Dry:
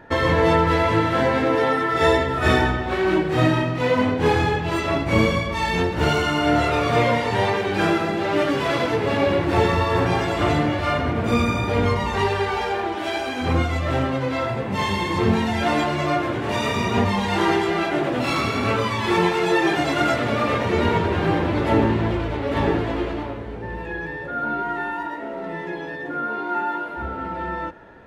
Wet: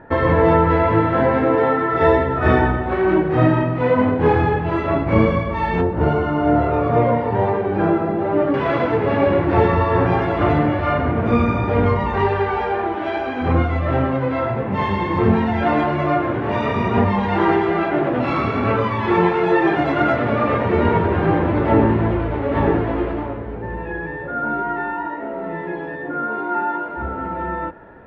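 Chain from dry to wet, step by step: low-pass 1.6 kHz 12 dB/octave, from 5.81 s 1 kHz, from 8.54 s 1.8 kHz; trim +3.5 dB

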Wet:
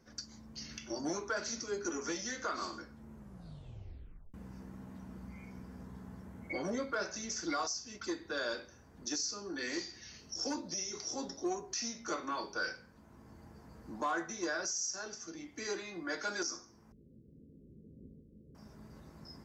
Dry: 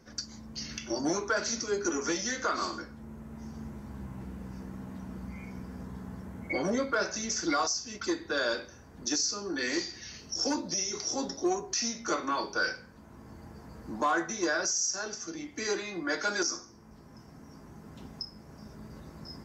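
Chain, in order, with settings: 3.16 s: tape stop 1.18 s; 16.92–18.55 s: steep low-pass 530 Hz 72 dB/octave; trim -7 dB

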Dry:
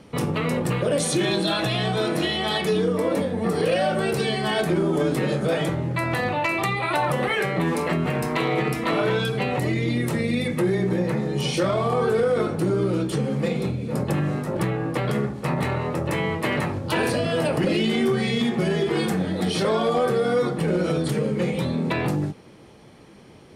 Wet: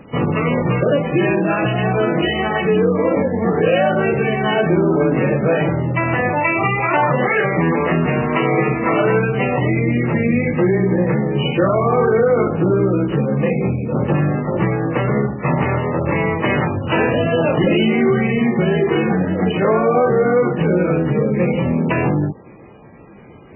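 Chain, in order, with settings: trim +7 dB; MP3 8 kbps 12 kHz

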